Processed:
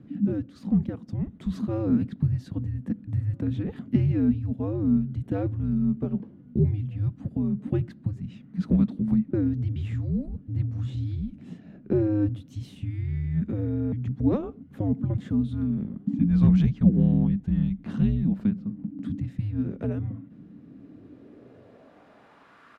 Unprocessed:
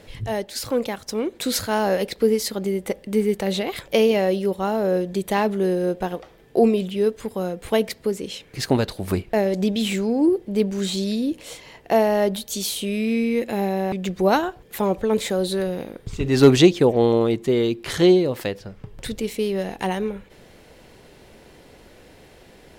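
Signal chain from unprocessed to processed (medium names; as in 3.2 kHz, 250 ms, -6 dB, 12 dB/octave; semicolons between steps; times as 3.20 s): dynamic bell 450 Hz, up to -5 dB, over -27 dBFS, Q 1.1; frequency shift -310 Hz; saturation -6.5 dBFS, distortion -23 dB; band-pass sweep 210 Hz -> 1.2 kHz, 20.57–22.69 s; echo from a far wall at 270 m, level -29 dB; trim +7.5 dB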